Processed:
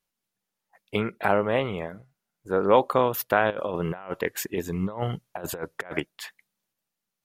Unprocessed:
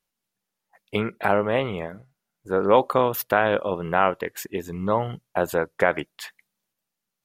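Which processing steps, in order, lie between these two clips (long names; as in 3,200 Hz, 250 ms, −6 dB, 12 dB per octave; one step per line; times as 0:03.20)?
0:03.50–0:06.00: compressor whose output falls as the input rises −27 dBFS, ratio −0.5
level −1.5 dB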